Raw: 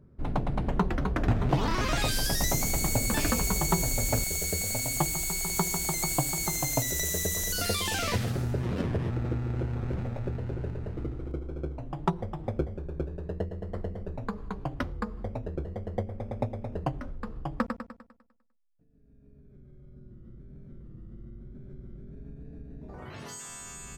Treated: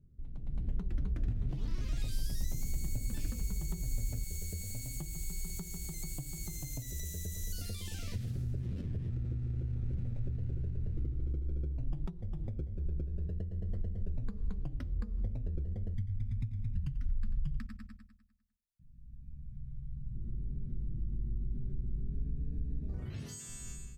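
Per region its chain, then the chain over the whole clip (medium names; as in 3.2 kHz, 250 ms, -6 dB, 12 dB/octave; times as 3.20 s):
15.94–20.15 s: Chebyshev band-stop 160–1700 Hz + delay 90 ms -14 dB
whole clip: compression 6:1, threshold -41 dBFS; amplifier tone stack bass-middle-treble 10-0-1; level rider gain up to 14.5 dB; trim +4.5 dB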